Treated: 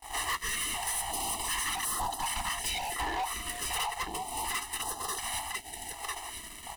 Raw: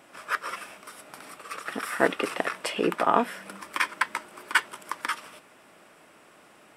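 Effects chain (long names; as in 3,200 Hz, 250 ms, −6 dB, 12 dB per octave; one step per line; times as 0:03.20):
neighbouring bands swapped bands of 500 Hz
graphic EQ with 15 bands 100 Hz −10 dB, 630 Hz +10 dB, 1,600 Hz −10 dB, 10,000 Hz +8 dB
downward compressor 4 to 1, threshold −39 dBFS, peak gain reduction 19 dB
parametric band 150 Hz −14 dB 1.1 octaves
leveller curve on the samples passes 3
noise gate −44 dBFS, range −20 dB
on a send: single-tap delay 999 ms −9 dB
on the sum: leveller curve on the samples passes 2
comb filter 1 ms, depth 81%
hard clipping −23 dBFS, distortion −12 dB
notch on a step sequencer 2.7 Hz 200–2,300 Hz
level −5 dB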